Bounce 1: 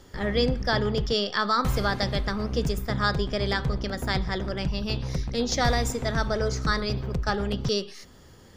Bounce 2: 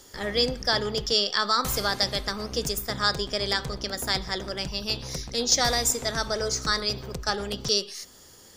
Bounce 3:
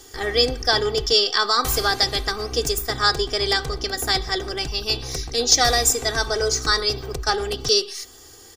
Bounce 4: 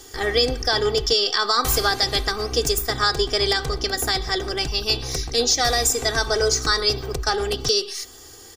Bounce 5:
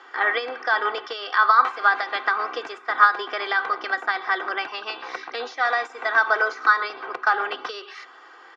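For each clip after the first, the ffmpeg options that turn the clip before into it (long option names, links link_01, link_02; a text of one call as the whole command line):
ffmpeg -i in.wav -af "bass=frequency=250:gain=-8,treble=frequency=4000:gain=13,volume=-1dB" out.wav
ffmpeg -i in.wav -af "aecho=1:1:2.6:0.73,volume=3.5dB" out.wav
ffmpeg -i in.wav -af "alimiter=limit=-10dB:level=0:latency=1:release=112,volume=2dB" out.wav
ffmpeg -i in.wav -af "crystalizer=i=5:c=0,acompressor=threshold=-10dB:ratio=10,highpass=frequency=380:width=0.5412,highpass=frequency=380:width=1.3066,equalizer=frequency=430:width_type=q:width=4:gain=-10,equalizer=frequency=1000:width_type=q:width=4:gain=9,equalizer=frequency=1400:width_type=q:width=4:gain=9,lowpass=frequency=2200:width=0.5412,lowpass=frequency=2200:width=1.3066" out.wav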